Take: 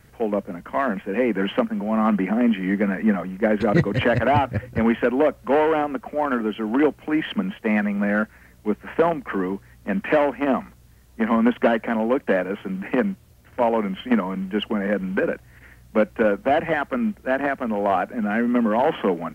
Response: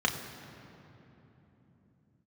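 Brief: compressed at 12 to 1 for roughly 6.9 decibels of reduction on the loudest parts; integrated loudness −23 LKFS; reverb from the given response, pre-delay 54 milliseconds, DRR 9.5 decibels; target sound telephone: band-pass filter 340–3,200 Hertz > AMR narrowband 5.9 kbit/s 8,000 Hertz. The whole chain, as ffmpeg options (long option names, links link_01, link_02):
-filter_complex "[0:a]acompressor=threshold=-20dB:ratio=12,asplit=2[link_01][link_02];[1:a]atrim=start_sample=2205,adelay=54[link_03];[link_02][link_03]afir=irnorm=-1:irlink=0,volume=-20dB[link_04];[link_01][link_04]amix=inputs=2:normalize=0,highpass=340,lowpass=3200,volume=7dB" -ar 8000 -c:a libopencore_amrnb -b:a 5900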